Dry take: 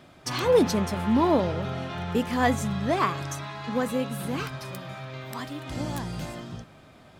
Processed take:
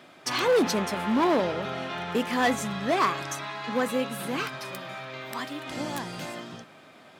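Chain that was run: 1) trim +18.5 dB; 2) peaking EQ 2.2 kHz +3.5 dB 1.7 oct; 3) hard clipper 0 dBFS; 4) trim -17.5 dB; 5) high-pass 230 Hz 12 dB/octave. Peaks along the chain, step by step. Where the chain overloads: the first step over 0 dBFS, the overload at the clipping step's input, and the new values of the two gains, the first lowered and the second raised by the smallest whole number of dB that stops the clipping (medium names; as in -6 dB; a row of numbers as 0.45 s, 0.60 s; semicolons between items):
+8.5 dBFS, +9.5 dBFS, 0.0 dBFS, -17.5 dBFS, -11.5 dBFS; step 1, 9.5 dB; step 1 +8.5 dB, step 4 -7.5 dB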